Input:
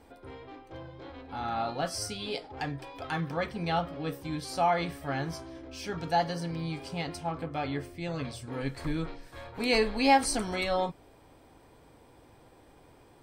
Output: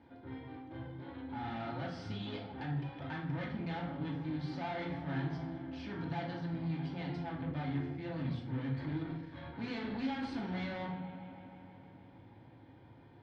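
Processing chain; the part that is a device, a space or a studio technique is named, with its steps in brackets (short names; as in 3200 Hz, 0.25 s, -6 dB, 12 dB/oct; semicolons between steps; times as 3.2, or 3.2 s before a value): analogue delay pedal into a guitar amplifier (analogue delay 0.157 s, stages 4096, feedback 78%, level -21 dB; tube stage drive 36 dB, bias 0.5; speaker cabinet 100–3400 Hz, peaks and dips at 100 Hz +9 dB, 180 Hz +5 dB, 400 Hz -6 dB, 600 Hz -9 dB, 1200 Hz -8 dB, 2600 Hz -8 dB); shoebox room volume 990 m³, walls furnished, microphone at 2.6 m; gain -1.5 dB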